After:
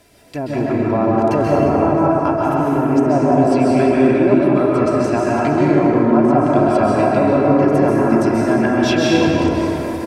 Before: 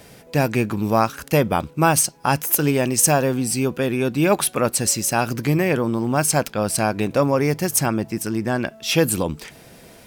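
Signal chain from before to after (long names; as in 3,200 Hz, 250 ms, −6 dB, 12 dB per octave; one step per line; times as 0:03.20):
treble cut that deepens with the level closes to 800 Hz, closed at −14 dBFS
comb filter 3 ms, depth 59%
automatic gain control gain up to 11.5 dB
dense smooth reverb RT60 4.3 s, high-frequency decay 0.4×, pre-delay 120 ms, DRR −6.5 dB
level −7.5 dB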